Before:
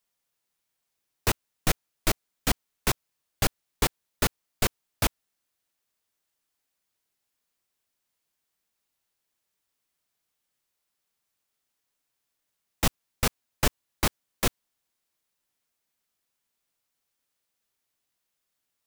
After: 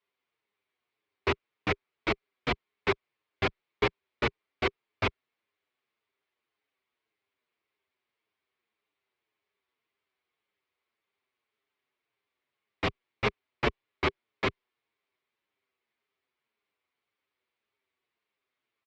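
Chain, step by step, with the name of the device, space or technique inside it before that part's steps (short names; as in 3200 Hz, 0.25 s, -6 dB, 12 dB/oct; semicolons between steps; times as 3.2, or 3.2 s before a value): barber-pole flanger into a guitar amplifier (endless flanger 7.2 ms -1.8 Hz; soft clip -16.5 dBFS, distortion -20 dB; speaker cabinet 78–3800 Hz, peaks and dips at 170 Hz -6 dB, 400 Hz +10 dB, 1100 Hz +5 dB, 2200 Hz +7 dB); gain +1.5 dB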